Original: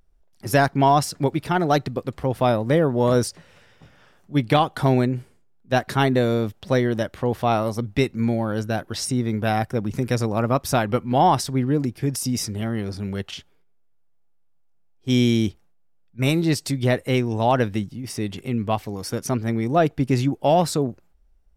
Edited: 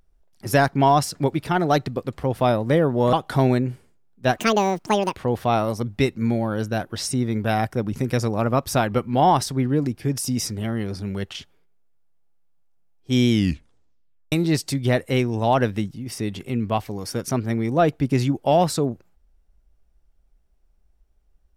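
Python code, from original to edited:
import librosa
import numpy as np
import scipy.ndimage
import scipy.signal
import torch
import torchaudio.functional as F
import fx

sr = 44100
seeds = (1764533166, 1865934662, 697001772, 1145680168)

y = fx.edit(x, sr, fx.cut(start_s=3.13, length_s=1.47),
    fx.speed_span(start_s=5.85, length_s=1.29, speed=1.65),
    fx.tape_stop(start_s=15.28, length_s=1.02), tone=tone)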